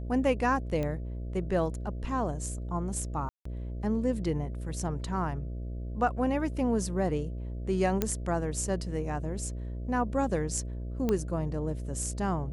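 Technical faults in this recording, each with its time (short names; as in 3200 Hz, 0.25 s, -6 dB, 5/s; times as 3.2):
buzz 60 Hz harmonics 11 -36 dBFS
0.83 pop -21 dBFS
3.29–3.45 gap 0.164 s
8.02 pop -12 dBFS
11.09 pop -16 dBFS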